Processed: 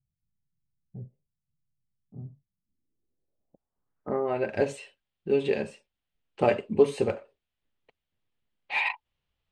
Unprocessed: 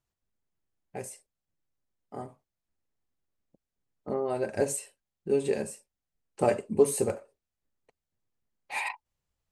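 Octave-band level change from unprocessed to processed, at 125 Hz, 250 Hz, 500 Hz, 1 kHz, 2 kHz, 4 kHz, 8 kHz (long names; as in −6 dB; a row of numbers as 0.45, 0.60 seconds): +2.0 dB, +1.5 dB, +1.5 dB, +2.0 dB, +6.0 dB, +5.5 dB, below −15 dB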